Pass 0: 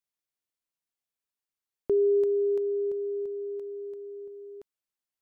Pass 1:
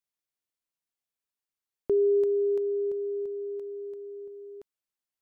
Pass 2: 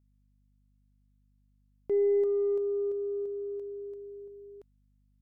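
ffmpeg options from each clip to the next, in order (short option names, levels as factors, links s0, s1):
-af anull
-af "aeval=exprs='0.112*(cos(1*acos(clip(val(0)/0.112,-1,1)))-cos(1*PI/2))+0.00251*(cos(2*acos(clip(val(0)/0.112,-1,1)))-cos(2*PI/2))+0.00282*(cos(5*acos(clip(val(0)/0.112,-1,1)))-cos(5*PI/2))':c=same,adynamicequalizer=threshold=0.0141:dfrequency=490:dqfactor=1:tfrequency=490:tqfactor=1:attack=5:release=100:ratio=0.375:range=2.5:mode=boostabove:tftype=bell,aeval=exprs='val(0)+0.001*(sin(2*PI*50*n/s)+sin(2*PI*2*50*n/s)/2+sin(2*PI*3*50*n/s)/3+sin(2*PI*4*50*n/s)/4+sin(2*PI*5*50*n/s)/5)':c=same,volume=0.473"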